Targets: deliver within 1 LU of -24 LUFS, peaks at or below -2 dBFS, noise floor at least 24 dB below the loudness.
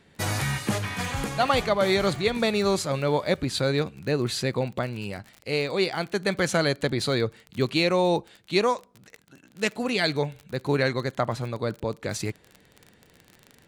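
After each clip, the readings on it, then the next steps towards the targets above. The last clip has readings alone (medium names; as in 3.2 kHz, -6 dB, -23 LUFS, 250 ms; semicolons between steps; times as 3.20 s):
tick rate 33 per s; loudness -26.0 LUFS; peak level -9.0 dBFS; loudness target -24.0 LUFS
-> de-click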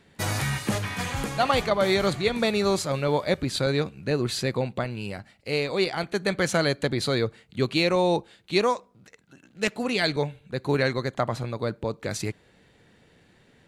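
tick rate 0 per s; loudness -26.0 LUFS; peak level -9.0 dBFS; loudness target -24.0 LUFS
-> trim +2 dB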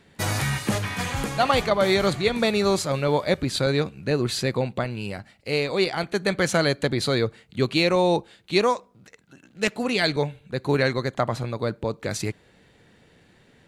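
loudness -24.0 LUFS; peak level -7.0 dBFS; noise floor -58 dBFS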